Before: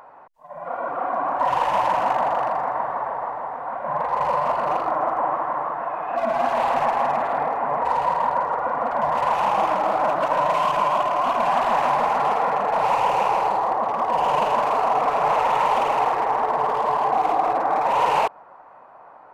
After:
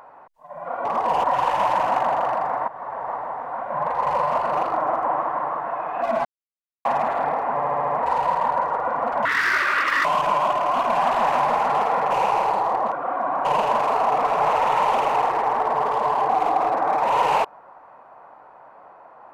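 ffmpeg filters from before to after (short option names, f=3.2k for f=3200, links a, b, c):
-filter_complex "[0:a]asplit=16[a][b][c][d][e][f][g][h][i][j][k][l][m][n][o][p];[a]atrim=end=0.852[q];[b]atrim=start=13.888:end=14.282[r];[c]atrim=start=1.378:end=2.82,asetpts=PTS-STARTPTS,afade=t=out:st=1.438:d=0.004:c=hsin:silence=0.188365[s];[d]atrim=start=2.82:end=6.39,asetpts=PTS-STARTPTS,afade=t=in:d=0.45:silence=0.188365,afade=t=out:st=3.566:d=0.004:c=hsin[t];[e]atrim=start=6.39:end=6.99,asetpts=PTS-STARTPTS,volume=0[u];[f]atrim=start=6.99:end=7.742,asetpts=PTS-STARTPTS,afade=t=in:d=0.004:c=hsin[v];[g]atrim=start=7.668:end=7.742[w];[h]atrim=start=7.668:end=7.742[x];[i]atrim=start=7.668:end=7.742[y];[j]atrim=start=7.668:end=7.742[z];[k]atrim=start=7.668:end=9.044[aa];[l]atrim=start=9.04:end=10.55,asetpts=PTS-STARTPTS,asetrate=83349,aresample=44100,atrim=end_sample=35233,asetpts=PTS-STARTPTS[ab];[m]atrim=start=10.546:end=12.612[ac];[n]atrim=start=13.078:end=13.892[ad];[o]atrim=start=0.848:end=1.382[ae];[p]atrim=start=14.278[af];[q][r]acrossfade=d=0.004:c1=hsin:c2=hsin[ag];[s][t][u][v]concat=n=4:v=0:a=1[ah];[ag][ah]acrossfade=d=0.004:c1=hsin:c2=hsin[ai];[ai][w]acrossfade=d=0.004:c1=hsin:c2=hsin[aj];[aj][x]acrossfade=d=0.004:c1=hsin:c2=hsin[ak];[ak][y]acrossfade=d=0.004:c1=hsin:c2=hsin[al];[al][z]acrossfade=d=0.004:c1=hsin:c2=hsin[am];[am][aa]acrossfade=d=0.004:c1=hsin:c2=hsin[an];[an][ab]acrossfade=d=0.004:c1=hsin:c2=hsin[ao];[ao][ac]acrossfade=d=0.004:c1=hsin:c2=hsin[ap];[ap][ad]acrossfade=d=0.004:c1=hsin:c2=hsin[aq];[aq][ae]acrossfade=d=0.004:c1=hsin:c2=hsin[ar];[ar][af]acrossfade=d=0.004:c1=hsin:c2=hsin"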